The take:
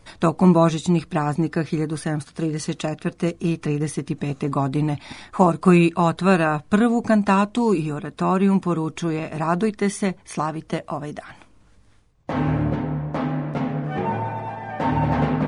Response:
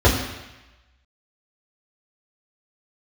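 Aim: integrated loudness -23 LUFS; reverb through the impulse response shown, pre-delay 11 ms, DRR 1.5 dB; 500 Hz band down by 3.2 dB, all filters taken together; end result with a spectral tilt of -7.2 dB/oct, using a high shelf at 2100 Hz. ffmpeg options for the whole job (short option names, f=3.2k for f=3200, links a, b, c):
-filter_complex "[0:a]equalizer=f=500:t=o:g=-4,highshelf=f=2.1k:g=-8.5,asplit=2[a][b];[1:a]atrim=start_sample=2205,adelay=11[c];[b][c]afir=irnorm=-1:irlink=0,volume=-23.5dB[d];[a][d]amix=inputs=2:normalize=0,volume=-4dB"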